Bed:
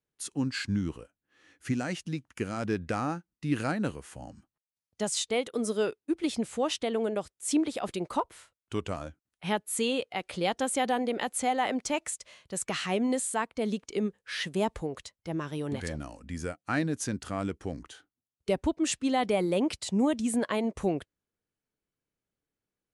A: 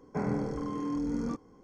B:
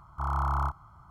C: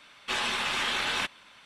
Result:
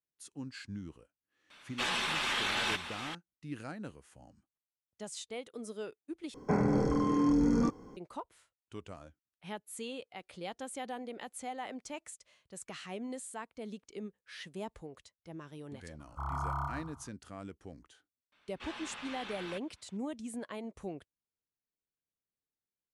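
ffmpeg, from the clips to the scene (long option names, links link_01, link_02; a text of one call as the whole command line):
ffmpeg -i bed.wav -i cue0.wav -i cue1.wav -i cue2.wav -filter_complex "[3:a]asplit=2[link_01][link_02];[0:a]volume=-13dB[link_03];[link_01]aecho=1:1:756:0.316[link_04];[1:a]alimiter=level_in=23.5dB:limit=-1dB:release=50:level=0:latency=1[link_05];[2:a]aecho=1:1:122|244|366|488:0.501|0.17|0.0579|0.0197[link_06];[link_02]aemphasis=mode=reproduction:type=50kf[link_07];[link_03]asplit=2[link_08][link_09];[link_08]atrim=end=6.344[link_10];[link_05]atrim=end=1.63,asetpts=PTS-STARTPTS,volume=-18dB[link_11];[link_09]atrim=start=7.966[link_12];[link_04]atrim=end=1.65,asetpts=PTS-STARTPTS,volume=-3.5dB,afade=type=in:duration=0.004:curve=hsin,afade=type=out:start_time=1.646:duration=0.004:curve=hsin,adelay=1500[link_13];[link_06]atrim=end=1.1,asetpts=PTS-STARTPTS,volume=-7dB,afade=type=in:duration=0.004:curve=hsin,afade=type=out:start_time=1.096:duration=0.004:curve=hsin,adelay=15990[link_14];[link_07]atrim=end=1.65,asetpts=PTS-STARTPTS,volume=-14.5dB,afade=type=in:duration=0.004:curve=hsin,afade=type=out:start_time=1.646:duration=0.004:curve=hsin,adelay=18320[link_15];[link_10][link_11]acrossfade=duration=0.004:curve1=hsin:curve2=hsin[link_16];[link_16][link_12]acrossfade=duration=0.004:curve1=hsin:curve2=hsin[link_17];[link_17][link_13][link_14][link_15]amix=inputs=4:normalize=0" out.wav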